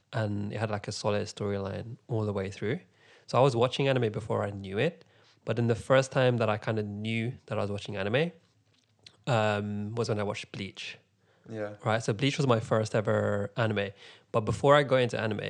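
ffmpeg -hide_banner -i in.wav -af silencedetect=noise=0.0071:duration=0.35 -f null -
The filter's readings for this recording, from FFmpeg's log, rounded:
silence_start: 2.79
silence_end: 3.29 | silence_duration: 0.50
silence_start: 5.01
silence_end: 5.47 | silence_duration: 0.45
silence_start: 8.30
silence_end: 9.07 | silence_duration: 0.76
silence_start: 10.95
silence_end: 11.46 | silence_duration: 0.51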